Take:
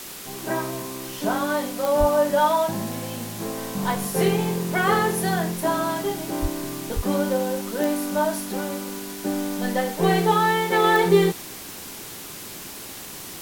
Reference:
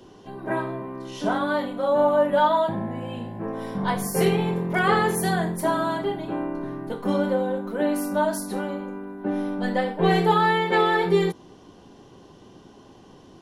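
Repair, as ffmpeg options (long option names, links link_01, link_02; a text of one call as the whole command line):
ffmpeg -i in.wav -filter_complex "[0:a]adeclick=threshold=4,asplit=3[link_01][link_02][link_03];[link_01]afade=type=out:start_time=1.99:duration=0.02[link_04];[link_02]highpass=frequency=140:width=0.5412,highpass=frequency=140:width=1.3066,afade=type=in:start_time=1.99:duration=0.02,afade=type=out:start_time=2.11:duration=0.02[link_05];[link_03]afade=type=in:start_time=2.11:duration=0.02[link_06];[link_04][link_05][link_06]amix=inputs=3:normalize=0,asplit=3[link_07][link_08][link_09];[link_07]afade=type=out:start_time=6.41:duration=0.02[link_10];[link_08]highpass=frequency=140:width=0.5412,highpass=frequency=140:width=1.3066,afade=type=in:start_time=6.41:duration=0.02,afade=type=out:start_time=6.53:duration=0.02[link_11];[link_09]afade=type=in:start_time=6.53:duration=0.02[link_12];[link_10][link_11][link_12]amix=inputs=3:normalize=0,asplit=3[link_13][link_14][link_15];[link_13]afade=type=out:start_time=6.95:duration=0.02[link_16];[link_14]highpass=frequency=140:width=0.5412,highpass=frequency=140:width=1.3066,afade=type=in:start_time=6.95:duration=0.02,afade=type=out:start_time=7.07:duration=0.02[link_17];[link_15]afade=type=in:start_time=7.07:duration=0.02[link_18];[link_16][link_17][link_18]amix=inputs=3:normalize=0,afwtdn=0.014,asetnsamples=nb_out_samples=441:pad=0,asendcmd='10.84 volume volume -3.5dB',volume=0dB" out.wav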